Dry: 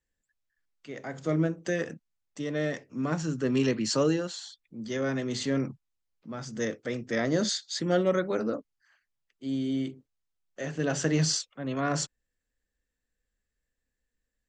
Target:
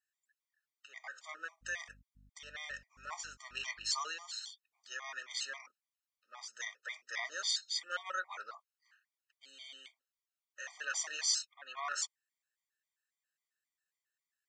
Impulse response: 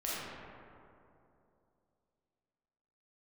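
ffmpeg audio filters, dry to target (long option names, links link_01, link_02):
-filter_complex "[0:a]highpass=frequency=1000:width=0.5412,highpass=frequency=1000:width=1.3066,asettb=1/sr,asplit=3[link_01][link_02][link_03];[link_01]atrim=end=1.494[link_04];[link_02]atrim=start=1.49:end=3.91,asetpts=PTS-STARTPTS,afade=type=in:duration=0.004:curve=qsin,afade=type=out:start_time=2.416:duration=0.004:curve=qsin,aeval=exprs='val(0)+0.000891*(sin(2*PI*50*n/s)+sin(2*PI*2*50*n/s)/2+sin(2*PI*3*50*n/s)/3+sin(2*PI*4*50*n/s)/4+sin(2*PI*5*50*n/s)/5)':channel_layout=same[link_05];[link_03]atrim=start=3.906[link_06];[link_04][link_05]acrossfade=duration=0.004:curve1=hsin:curve2=qsin[link_07];[link_07][link_06]acrossfade=duration=0.004:curve1=qsin:curve2=hsin,afftfilt=real='re*gt(sin(2*PI*3.7*pts/sr)*(1-2*mod(floor(b*sr/1024/620),2)),0)':imag='im*gt(sin(2*PI*3.7*pts/sr)*(1-2*mod(floor(b*sr/1024/620),2)),0)':win_size=1024:overlap=0.75"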